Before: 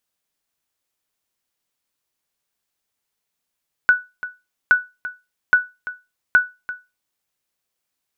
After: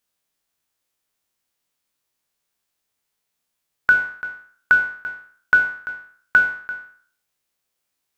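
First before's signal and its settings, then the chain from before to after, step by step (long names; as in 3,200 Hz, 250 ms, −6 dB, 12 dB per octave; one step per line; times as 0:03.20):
ping with an echo 1,480 Hz, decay 0.24 s, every 0.82 s, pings 4, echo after 0.34 s, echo −15.5 dB −5 dBFS
peak hold with a decay on every bin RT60 0.50 s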